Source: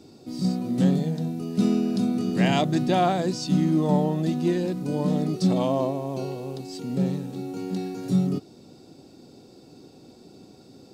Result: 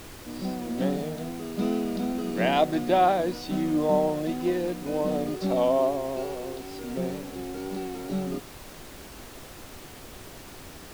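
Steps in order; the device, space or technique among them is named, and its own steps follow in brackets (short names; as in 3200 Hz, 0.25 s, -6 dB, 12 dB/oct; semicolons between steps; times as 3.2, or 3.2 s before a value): horn gramophone (BPF 300–3300 Hz; bell 610 Hz +6.5 dB 0.31 oct; wow and flutter; pink noise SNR 16 dB)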